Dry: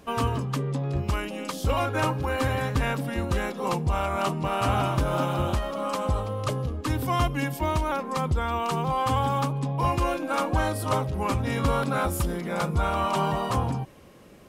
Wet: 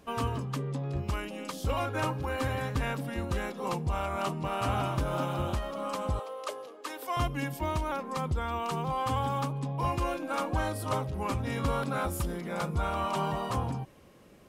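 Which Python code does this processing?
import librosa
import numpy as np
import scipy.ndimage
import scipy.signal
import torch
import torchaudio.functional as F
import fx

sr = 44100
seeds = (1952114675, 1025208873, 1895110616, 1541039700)

y = fx.highpass(x, sr, hz=410.0, slope=24, at=(6.19, 7.17))
y = y * librosa.db_to_amplitude(-5.5)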